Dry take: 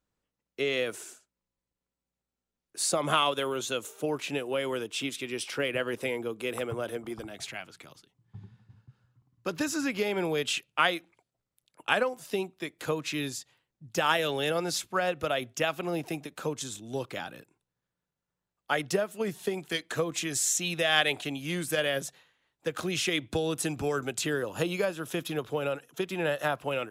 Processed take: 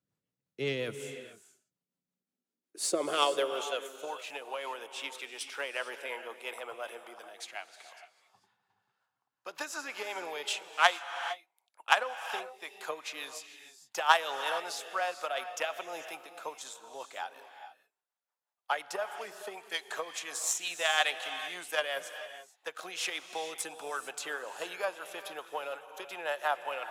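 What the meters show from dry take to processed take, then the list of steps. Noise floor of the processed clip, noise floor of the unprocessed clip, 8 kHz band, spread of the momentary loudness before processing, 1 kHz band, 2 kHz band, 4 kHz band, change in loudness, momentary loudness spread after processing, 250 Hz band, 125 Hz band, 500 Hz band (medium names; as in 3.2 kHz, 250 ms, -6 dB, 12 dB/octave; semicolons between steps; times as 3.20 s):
under -85 dBFS, under -85 dBFS, -4.5 dB, 12 LU, 0.0 dB, -2.0 dB, -3.0 dB, -4.0 dB, 16 LU, -14.5 dB, under -15 dB, -6.5 dB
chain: rotary cabinet horn 5.5 Hz; Chebyshev shaper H 3 -14 dB, 8 -41 dB, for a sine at -11 dBFS; high-pass sweep 130 Hz -> 820 Hz, 1.53–4.08 s; gated-style reverb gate 480 ms rising, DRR 10 dB; trim +4.5 dB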